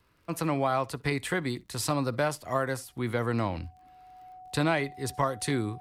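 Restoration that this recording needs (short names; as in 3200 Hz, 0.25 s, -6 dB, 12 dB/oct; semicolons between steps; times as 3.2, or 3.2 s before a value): de-click; notch 740 Hz, Q 30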